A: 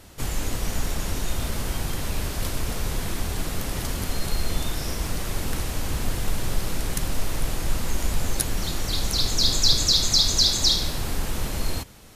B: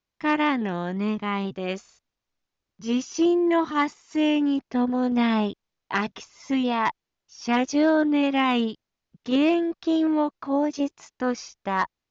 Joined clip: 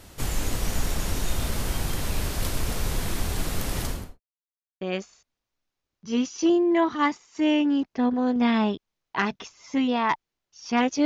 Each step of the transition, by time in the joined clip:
A
3.8–4.2 studio fade out
4.2–4.81 mute
4.81 switch to B from 1.57 s

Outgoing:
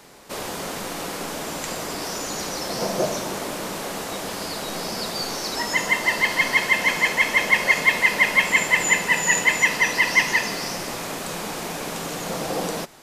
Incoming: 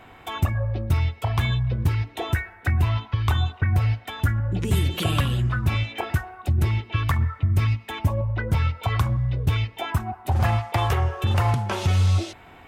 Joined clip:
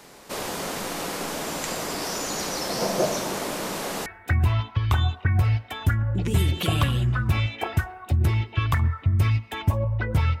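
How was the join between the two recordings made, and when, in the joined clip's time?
outgoing
4.06 switch to incoming from 2.43 s

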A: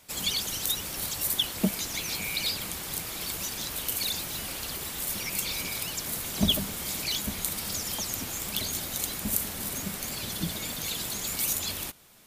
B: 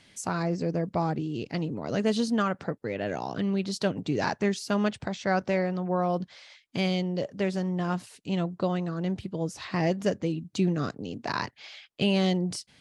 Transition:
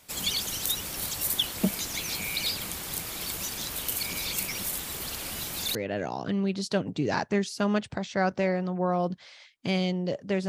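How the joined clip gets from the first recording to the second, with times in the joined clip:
A
4.03–5.75 reverse
5.75 switch to B from 2.85 s

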